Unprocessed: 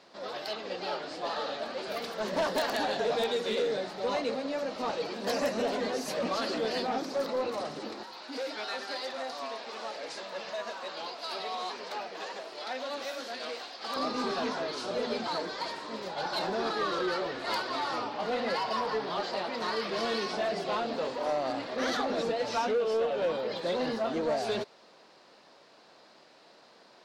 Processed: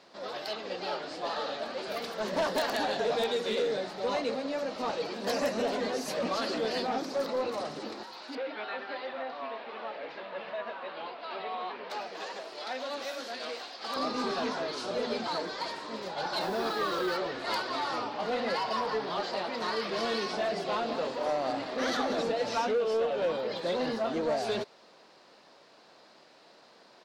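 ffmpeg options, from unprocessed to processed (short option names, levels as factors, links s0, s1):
-filter_complex "[0:a]asettb=1/sr,asplit=3[s0][s1][s2];[s0]atrim=end=8.354[s3];[s1]atrim=start=8.35:end=11.9,asetpts=PTS-STARTPTS,afade=t=in:d=0.004:c=qsin,afade=t=out:st=3.546:d=0.004:c=qsin,lowpass=f=3100:w=0.5412,lowpass=f=3100:w=1.3066[s4];[s2]atrim=start=11.896[s5];[s3][s4]acrossfade=d=0.004:c1=hsin:c2=qsin[s6];[s6][s5]acrossfade=d=0.004:c1=qsin:c2=hsin,asettb=1/sr,asplit=3[s7][s8][s9];[s7]atrim=end=16.414[s10];[s8]atrim=start=16.41:end=17.17,asetpts=PTS-STARTPTS,afade=t=in:d=0.004:c=qsin,afade=t=out:st=0.756:d=0.004:c=qsin,acrusher=bits=7:mix=0:aa=0.5[s11];[s9]atrim=start=17.166[s12];[s10][s11]acrossfade=d=0.004:c1=hsin:c2=qsin[s13];[s13][s12]acrossfade=d=0.004:c1=qsin:c2=hsin,asplit=3[s14][s15][s16];[s14]afade=t=out:st=20.81:d=0.02[s17];[s15]aecho=1:1:184:0.299,afade=t=in:st=20.81:d=0.02,afade=t=out:st=22.61:d=0.02[s18];[s16]afade=t=in:st=22.61:d=0.02[s19];[s17][s18][s19]amix=inputs=3:normalize=0"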